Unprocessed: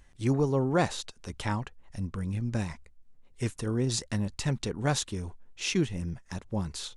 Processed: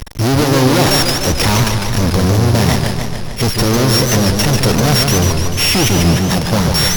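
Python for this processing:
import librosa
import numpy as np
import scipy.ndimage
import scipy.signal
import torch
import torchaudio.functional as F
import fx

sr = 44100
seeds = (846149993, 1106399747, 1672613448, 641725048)

y = np.r_[np.sort(x[:len(x) // 8 * 8].reshape(-1, 8), axis=1).ravel(), x[len(x) // 8 * 8:]]
y = fx.fuzz(y, sr, gain_db=49.0, gate_db=-54.0)
y = fx.echo_warbled(y, sr, ms=148, feedback_pct=66, rate_hz=2.8, cents=184, wet_db=-4.5)
y = y * librosa.db_to_amplitude(1.0)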